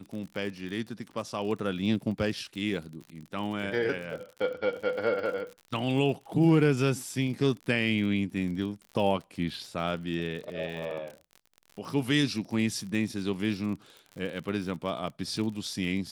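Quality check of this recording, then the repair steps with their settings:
crackle 52 per s -37 dBFS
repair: de-click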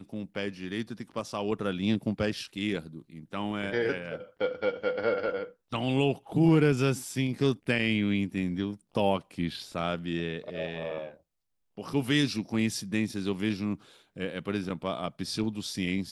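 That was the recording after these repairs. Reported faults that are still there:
nothing left

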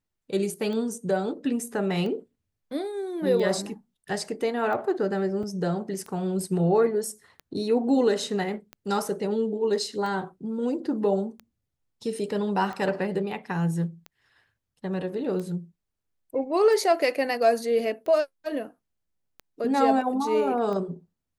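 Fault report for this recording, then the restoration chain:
tick 45 rpm -24 dBFS
5.43 s: dropout 4.9 ms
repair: de-click; interpolate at 5.43 s, 4.9 ms

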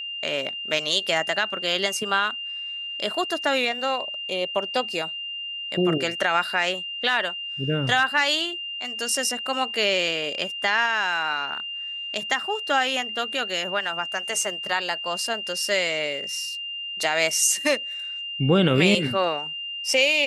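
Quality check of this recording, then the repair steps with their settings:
whine 2.8 kHz -30 dBFS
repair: band-stop 2.8 kHz, Q 30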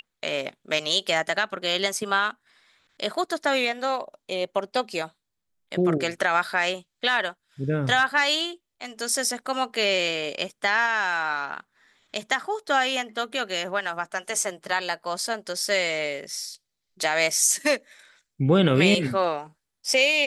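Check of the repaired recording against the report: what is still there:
nothing left

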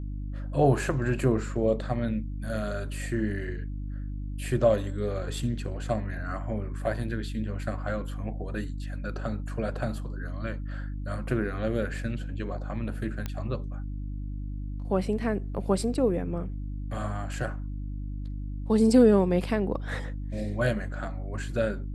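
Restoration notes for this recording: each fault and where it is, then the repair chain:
hum 50 Hz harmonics 6 -34 dBFS
13.26 s: pop -18 dBFS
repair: de-click; de-hum 50 Hz, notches 6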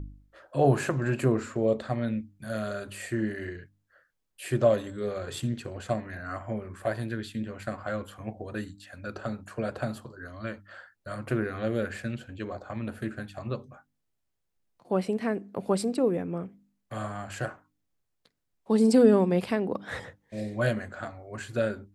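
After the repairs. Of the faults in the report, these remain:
nothing left

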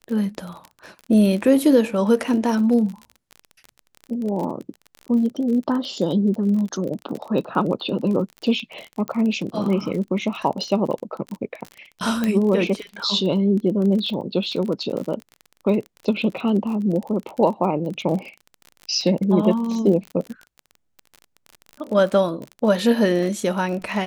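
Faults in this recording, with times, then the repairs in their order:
crackle 33 per s -28 dBFS
9.08 s: pop -15 dBFS
12.24 s: pop -9 dBFS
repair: de-click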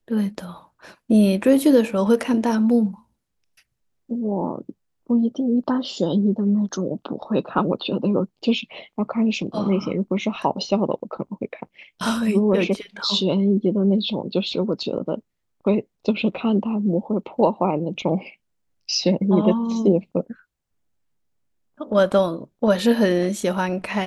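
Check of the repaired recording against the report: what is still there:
nothing left

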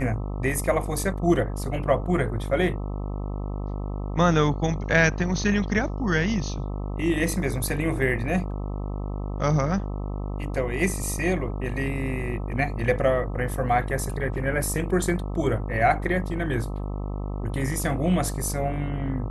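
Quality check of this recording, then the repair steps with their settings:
buzz 50 Hz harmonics 26 -30 dBFS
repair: de-hum 50 Hz, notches 26

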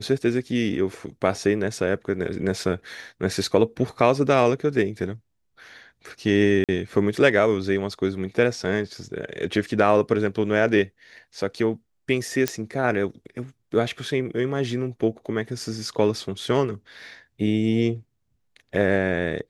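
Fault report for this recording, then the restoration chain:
6.64–6.69 s: dropout 47 ms
12.48 s: pop -6 dBFS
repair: de-click; interpolate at 6.64 s, 47 ms

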